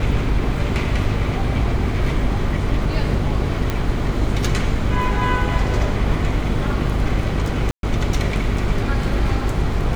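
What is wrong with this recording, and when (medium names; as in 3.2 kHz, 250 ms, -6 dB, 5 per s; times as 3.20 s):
buzz 50 Hz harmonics 9 -24 dBFS
3.70 s: pop -8 dBFS
7.71–7.83 s: dropout 122 ms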